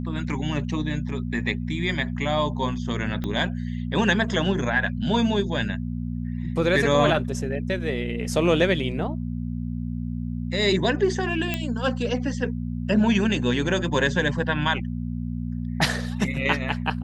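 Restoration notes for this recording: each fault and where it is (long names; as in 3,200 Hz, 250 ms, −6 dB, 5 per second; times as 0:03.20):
mains hum 60 Hz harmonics 4 −29 dBFS
0:03.24: click −17 dBFS
0:11.54: click −11 dBFS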